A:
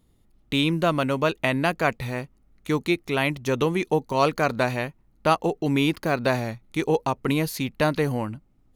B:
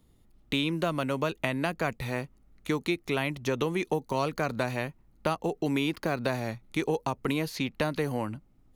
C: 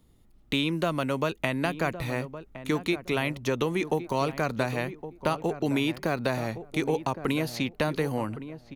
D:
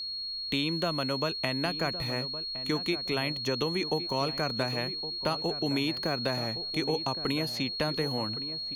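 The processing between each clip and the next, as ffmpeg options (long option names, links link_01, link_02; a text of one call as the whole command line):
ffmpeg -i in.wav -filter_complex "[0:a]acrossover=split=260|5900[link_01][link_02][link_03];[link_01]acompressor=threshold=-35dB:ratio=4[link_04];[link_02]acompressor=threshold=-27dB:ratio=4[link_05];[link_03]acompressor=threshold=-50dB:ratio=4[link_06];[link_04][link_05][link_06]amix=inputs=3:normalize=0" out.wav
ffmpeg -i in.wav -filter_complex "[0:a]asplit=2[link_01][link_02];[link_02]adelay=1114,lowpass=frequency=1100:poles=1,volume=-11.5dB,asplit=2[link_03][link_04];[link_04]adelay=1114,lowpass=frequency=1100:poles=1,volume=0.22,asplit=2[link_05][link_06];[link_06]adelay=1114,lowpass=frequency=1100:poles=1,volume=0.22[link_07];[link_01][link_03][link_05][link_07]amix=inputs=4:normalize=0,volume=1.5dB" out.wav
ffmpeg -i in.wav -af "aeval=exprs='val(0)+0.0316*sin(2*PI*4300*n/s)':channel_layout=same,volume=-3.5dB" out.wav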